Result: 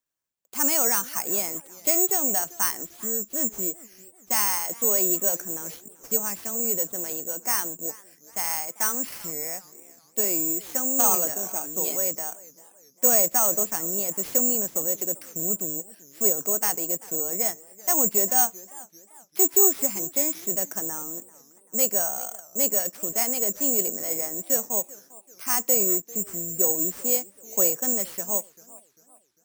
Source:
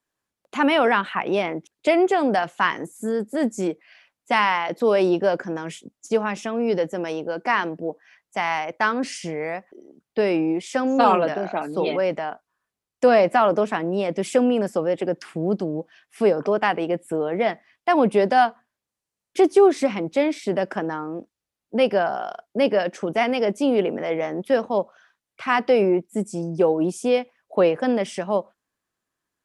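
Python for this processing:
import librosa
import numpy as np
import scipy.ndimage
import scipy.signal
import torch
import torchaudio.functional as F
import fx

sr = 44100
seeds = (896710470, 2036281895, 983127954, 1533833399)

y = (np.kron(x[::6], np.eye(6)[0]) * 6)[:len(x)]
y = fx.echo_warbled(y, sr, ms=393, feedback_pct=43, rate_hz=2.8, cents=180, wet_db=-20.5)
y = y * 10.0 ** (-11.5 / 20.0)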